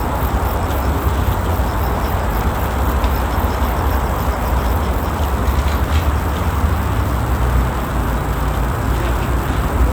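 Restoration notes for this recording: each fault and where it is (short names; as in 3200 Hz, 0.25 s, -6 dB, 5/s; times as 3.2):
crackle 220/s -22 dBFS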